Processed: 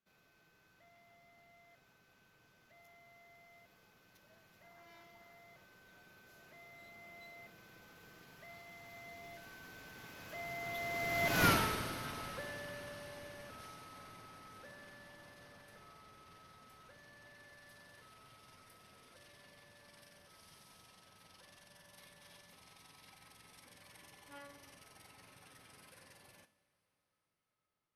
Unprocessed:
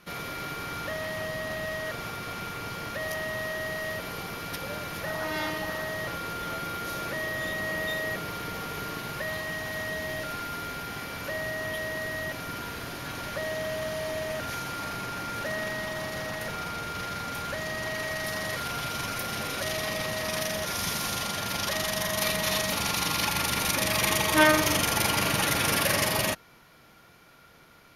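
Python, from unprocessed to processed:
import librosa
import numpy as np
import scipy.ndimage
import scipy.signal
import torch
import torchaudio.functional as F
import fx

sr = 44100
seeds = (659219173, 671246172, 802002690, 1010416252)

y = fx.doppler_pass(x, sr, speed_mps=29, closest_m=2.5, pass_at_s=11.47)
y = fx.rev_double_slope(y, sr, seeds[0], early_s=0.5, late_s=4.9, knee_db=-18, drr_db=10.0)
y = y * librosa.db_to_amplitude(8.5)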